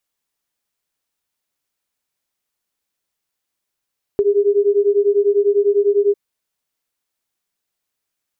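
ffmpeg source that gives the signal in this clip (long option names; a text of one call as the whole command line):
ffmpeg -f lavfi -i "aevalsrc='0.178*(sin(2*PI*401*t)+sin(2*PI*411*t))':duration=1.95:sample_rate=44100" out.wav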